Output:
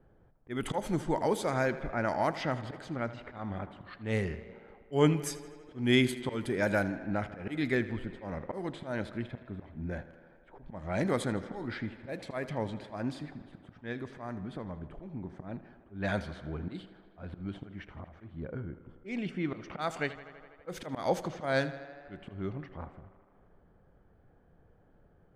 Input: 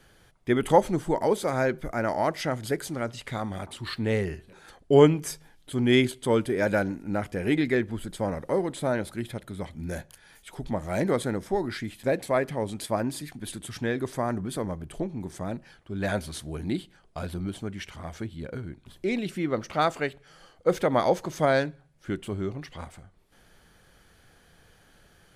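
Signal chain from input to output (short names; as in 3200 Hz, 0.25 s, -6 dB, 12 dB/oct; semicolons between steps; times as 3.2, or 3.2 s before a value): low-pass opened by the level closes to 720 Hz, open at -20 dBFS; dynamic EQ 430 Hz, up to -4 dB, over -37 dBFS, Q 1.5; auto swell 0.17 s; 13.92–15.41 compressor, threshold -33 dBFS, peak gain reduction 7 dB; 18.5–19.39 Butterworth band-stop 3900 Hz, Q 6.4; tape echo 80 ms, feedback 81%, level -15 dB, low-pass 5300 Hz; gain -2.5 dB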